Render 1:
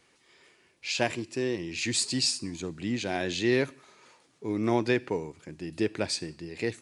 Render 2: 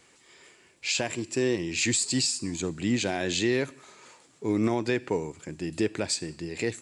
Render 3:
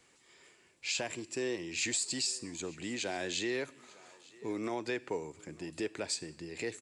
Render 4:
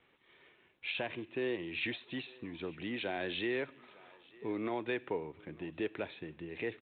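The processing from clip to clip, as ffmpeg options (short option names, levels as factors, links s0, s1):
-af "equalizer=f=7500:t=o:w=0.22:g=10.5,alimiter=limit=0.1:level=0:latency=1:release=239,volume=1.68"
-filter_complex "[0:a]acrossover=split=320[s0][s1];[s0]acompressor=threshold=0.01:ratio=6[s2];[s1]aecho=1:1:901:0.075[s3];[s2][s3]amix=inputs=2:normalize=0,volume=0.473"
-ar 8000 -c:a adpcm_g726 -b:a 40k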